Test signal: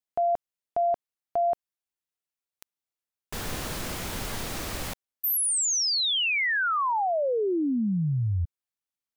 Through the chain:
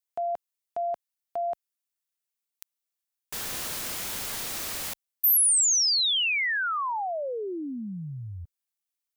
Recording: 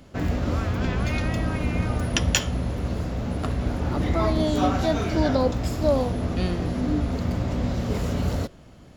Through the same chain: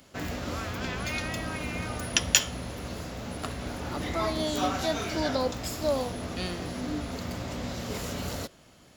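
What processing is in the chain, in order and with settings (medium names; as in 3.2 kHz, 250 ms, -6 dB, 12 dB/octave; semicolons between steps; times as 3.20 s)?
tilt EQ +2.5 dB/octave; trim -3.5 dB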